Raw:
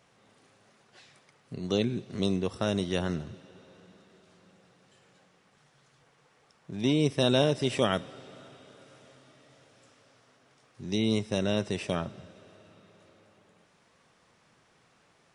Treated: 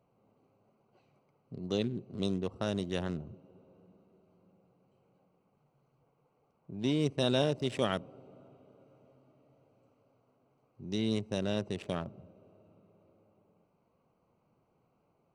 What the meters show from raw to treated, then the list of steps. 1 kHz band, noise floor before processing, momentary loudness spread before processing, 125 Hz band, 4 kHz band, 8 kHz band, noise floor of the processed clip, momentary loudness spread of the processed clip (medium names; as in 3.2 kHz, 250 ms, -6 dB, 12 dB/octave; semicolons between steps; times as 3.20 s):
-5.0 dB, -65 dBFS, 17 LU, -4.5 dB, -5.5 dB, -7.0 dB, -74 dBFS, 16 LU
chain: local Wiener filter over 25 samples; trim -4.5 dB